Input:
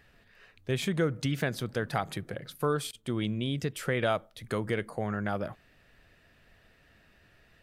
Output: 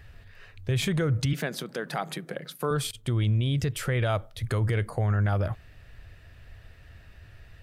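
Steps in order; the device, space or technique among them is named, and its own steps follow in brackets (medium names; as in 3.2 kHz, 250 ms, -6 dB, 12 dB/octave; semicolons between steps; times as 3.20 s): car stereo with a boomy subwoofer (resonant low shelf 140 Hz +11 dB, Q 1.5; peak limiter -22.5 dBFS, peak gain reduction 7.5 dB); 1.33–2.71 s: elliptic high-pass 160 Hz, stop band 40 dB; trim +5 dB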